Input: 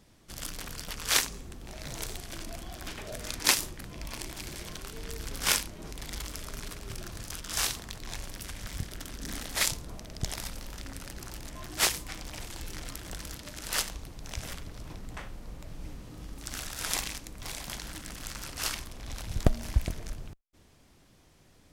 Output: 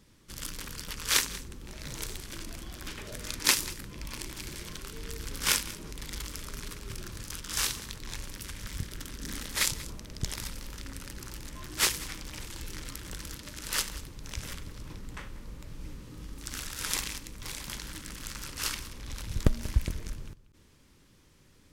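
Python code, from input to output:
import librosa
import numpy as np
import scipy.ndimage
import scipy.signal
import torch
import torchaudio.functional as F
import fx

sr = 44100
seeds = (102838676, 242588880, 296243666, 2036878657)

p1 = fx.peak_eq(x, sr, hz=700.0, db=-13.0, octaves=0.35)
y = p1 + fx.echo_single(p1, sr, ms=188, db=-17.0, dry=0)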